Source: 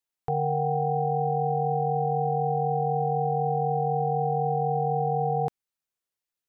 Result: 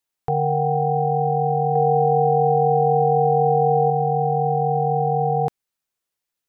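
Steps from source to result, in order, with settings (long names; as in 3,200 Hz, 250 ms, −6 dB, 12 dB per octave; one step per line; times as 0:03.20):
0:01.75–0:03.90: dynamic equaliser 500 Hz, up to +5 dB, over −41 dBFS, Q 1.1
level +5.5 dB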